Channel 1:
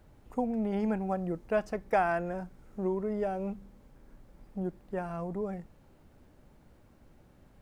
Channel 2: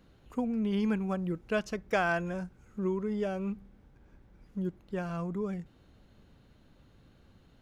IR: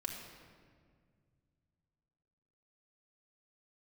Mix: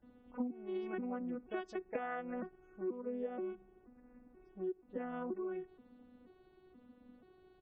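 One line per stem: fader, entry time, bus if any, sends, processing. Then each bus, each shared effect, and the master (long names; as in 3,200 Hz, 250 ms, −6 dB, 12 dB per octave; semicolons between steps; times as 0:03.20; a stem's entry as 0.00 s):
−15.5 dB, 0.00 s, no send, no processing
+1.0 dB, 17 ms, polarity flipped, no send, vocoder with an arpeggio as carrier bare fifth, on B3, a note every 480 ms; high-shelf EQ 5,300 Hz −3.5 dB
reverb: not used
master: spectral peaks only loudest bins 64; downward compressor 6 to 1, threshold −37 dBFS, peak gain reduction 17.5 dB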